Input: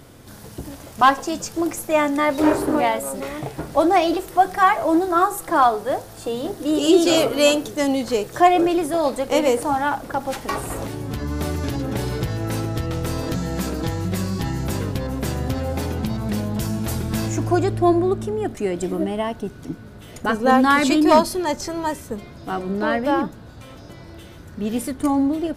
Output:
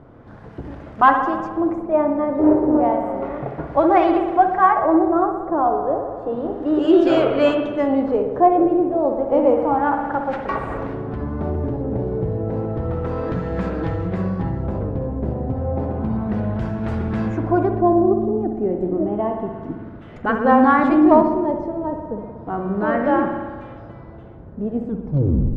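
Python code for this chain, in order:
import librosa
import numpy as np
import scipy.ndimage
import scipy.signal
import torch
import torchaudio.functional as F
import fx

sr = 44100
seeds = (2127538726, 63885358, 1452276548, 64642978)

y = fx.tape_stop_end(x, sr, length_s=0.83)
y = fx.rev_spring(y, sr, rt60_s=1.5, pass_ms=(59,), chirp_ms=60, drr_db=4.5)
y = fx.filter_lfo_lowpass(y, sr, shape='sine', hz=0.31, low_hz=620.0, high_hz=1700.0, q=1.0)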